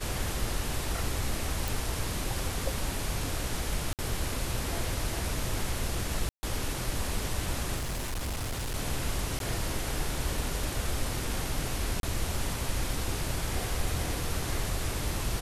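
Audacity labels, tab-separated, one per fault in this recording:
1.680000	1.680000	pop
3.930000	3.990000	gap 58 ms
6.290000	6.430000	gap 0.14 s
7.760000	8.760000	clipped -29.5 dBFS
9.390000	9.400000	gap 12 ms
12.000000	12.030000	gap 32 ms

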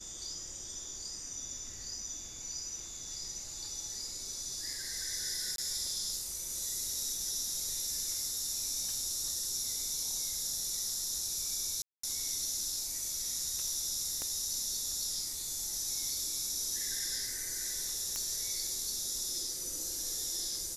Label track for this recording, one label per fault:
5.560000	5.580000	gap 22 ms
11.820000	12.030000	gap 0.214 s
14.220000	14.220000	pop -24 dBFS
18.160000	18.160000	pop -20 dBFS

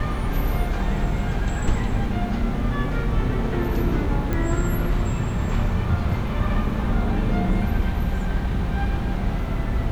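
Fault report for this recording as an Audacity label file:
4.330000	4.330000	pop -13 dBFS

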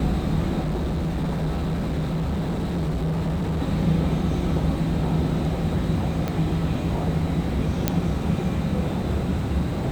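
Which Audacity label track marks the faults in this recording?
0.600000	3.610000	clipped -21.5 dBFS
6.280000	6.280000	pop -13 dBFS
7.880000	7.880000	pop -5 dBFS

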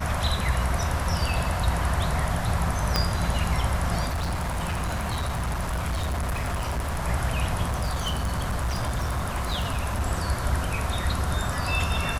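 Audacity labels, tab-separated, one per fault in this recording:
2.960000	2.960000	pop -7 dBFS
4.060000	7.020000	clipped -24 dBFS
7.680000	10.020000	clipped -22.5 dBFS

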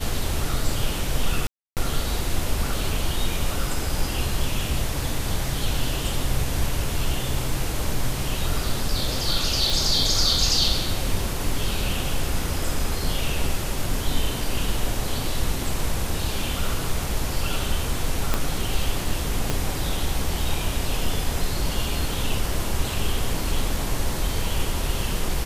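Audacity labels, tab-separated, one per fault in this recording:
1.470000	1.770000	gap 0.298 s
9.700000	9.700000	pop
18.340000	18.340000	pop -6 dBFS
19.500000	19.500000	pop -8 dBFS

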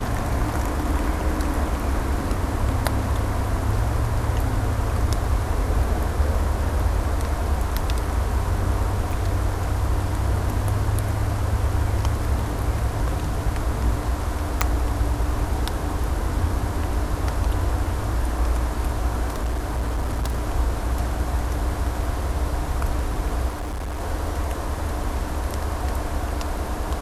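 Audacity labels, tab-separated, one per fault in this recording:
9.110000	9.110000	gap 2 ms
14.610000	14.610000	pop
19.340000	20.460000	clipped -20 dBFS
23.480000	24.010000	clipped -25.5 dBFS

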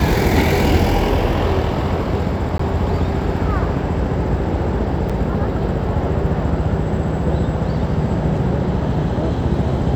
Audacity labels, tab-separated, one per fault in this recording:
2.580000	2.590000	gap 14 ms
5.090000	5.100000	gap 6.3 ms

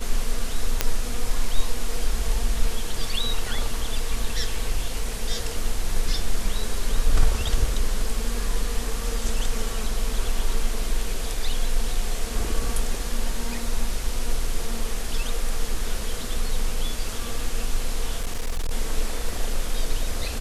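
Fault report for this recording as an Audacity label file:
0.810000	0.810000	pop -3 dBFS
18.210000	18.710000	clipped -21 dBFS

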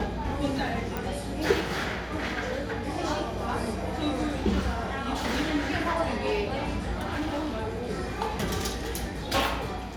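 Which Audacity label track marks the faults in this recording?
0.970000	0.970000	pop
7.130000	7.870000	clipped -26.5 dBFS

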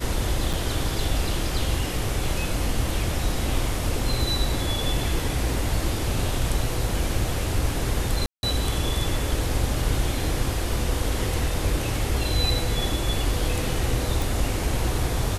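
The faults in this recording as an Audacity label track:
0.530000	0.540000	gap 6.2 ms
8.260000	8.430000	gap 0.171 s
14.220000	14.220000	pop

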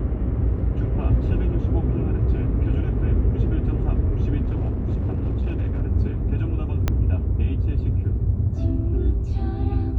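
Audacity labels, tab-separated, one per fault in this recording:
4.410000	5.820000	clipped -19.5 dBFS
6.880000	6.880000	pop -8 dBFS

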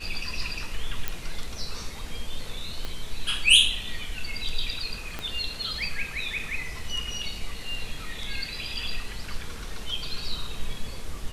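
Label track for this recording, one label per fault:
1.080000	1.080000	pop -12 dBFS
2.850000	2.850000	pop -19 dBFS
5.190000	5.190000	pop -17 dBFS

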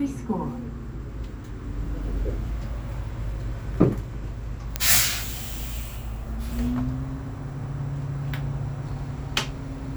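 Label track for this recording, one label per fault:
4.760000	4.760000	pop -6 dBFS

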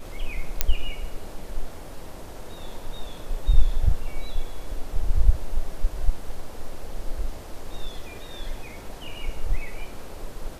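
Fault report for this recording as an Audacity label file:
0.610000	0.610000	pop -3 dBFS

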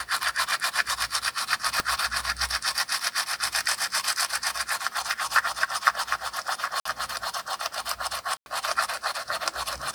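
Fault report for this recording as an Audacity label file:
1.800000	1.800000	pop -9 dBFS
6.800000	6.850000	gap 54 ms
8.370000	8.460000	gap 91 ms

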